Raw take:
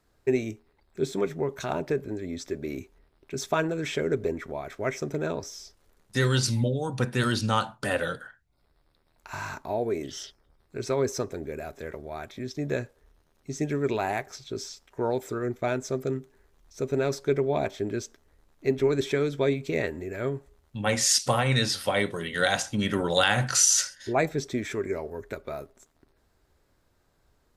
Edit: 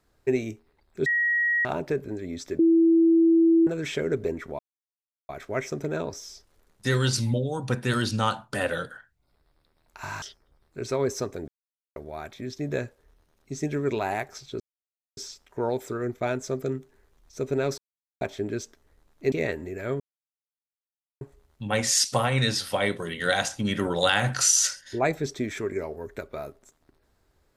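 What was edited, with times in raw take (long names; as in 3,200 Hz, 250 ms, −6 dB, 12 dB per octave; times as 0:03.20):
0:01.06–0:01.65: beep over 1,900 Hz −20.5 dBFS
0:02.59–0:03.67: beep over 330 Hz −15 dBFS
0:04.59: splice in silence 0.70 s
0:09.52–0:10.20: remove
0:11.46–0:11.94: silence
0:14.58: splice in silence 0.57 s
0:17.19–0:17.62: silence
0:18.73–0:19.67: remove
0:20.35: splice in silence 1.21 s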